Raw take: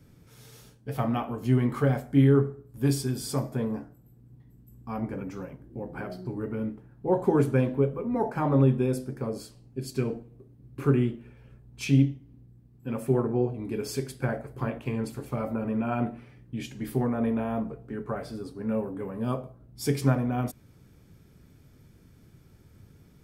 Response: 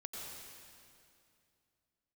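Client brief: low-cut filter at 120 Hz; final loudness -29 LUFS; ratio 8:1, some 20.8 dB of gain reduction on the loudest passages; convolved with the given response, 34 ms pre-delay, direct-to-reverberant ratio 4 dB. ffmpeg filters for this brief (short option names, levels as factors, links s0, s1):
-filter_complex "[0:a]highpass=120,acompressor=threshold=0.0112:ratio=8,asplit=2[s0][s1];[1:a]atrim=start_sample=2205,adelay=34[s2];[s1][s2]afir=irnorm=-1:irlink=0,volume=0.75[s3];[s0][s3]amix=inputs=2:normalize=0,volume=5.01"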